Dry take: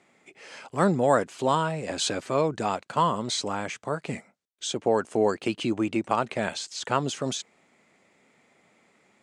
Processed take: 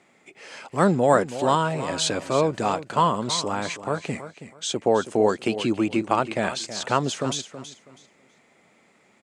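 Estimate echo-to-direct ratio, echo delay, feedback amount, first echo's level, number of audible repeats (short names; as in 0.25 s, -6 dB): -12.0 dB, 0.324 s, 24%, -12.5 dB, 2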